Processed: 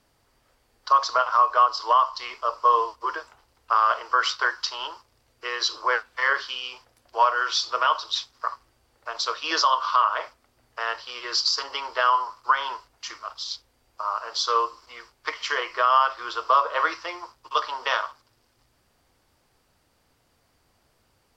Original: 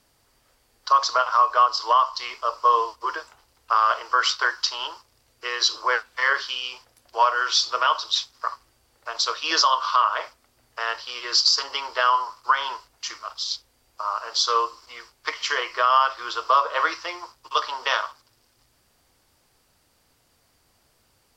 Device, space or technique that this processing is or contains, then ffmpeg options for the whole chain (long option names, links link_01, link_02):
behind a face mask: -af "highshelf=frequency=3500:gain=-7"